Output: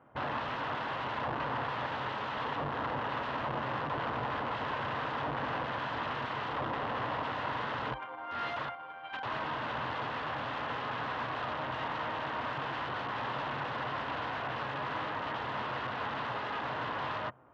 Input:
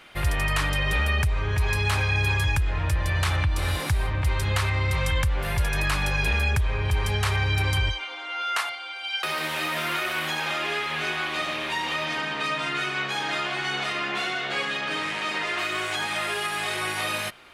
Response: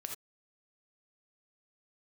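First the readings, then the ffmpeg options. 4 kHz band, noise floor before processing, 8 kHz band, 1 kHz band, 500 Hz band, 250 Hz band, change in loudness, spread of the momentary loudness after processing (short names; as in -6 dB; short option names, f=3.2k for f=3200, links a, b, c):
-14.0 dB, -35 dBFS, under -25 dB, -2.5 dB, -5.0 dB, -5.5 dB, -10.0 dB, 2 LU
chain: -af "adynamicsmooth=sensitivity=2:basefreq=620,aeval=exprs='(mod(26.6*val(0)+1,2)-1)/26.6':c=same,highpass=110,equalizer=f=130:t=q:w=4:g=7,equalizer=f=180:t=q:w=4:g=-10,equalizer=f=370:t=q:w=4:g=-8,equalizer=f=1k:t=q:w=4:g=6,equalizer=f=2.3k:t=q:w=4:g=-9,lowpass=f=2.8k:w=0.5412,lowpass=f=2.8k:w=1.3066"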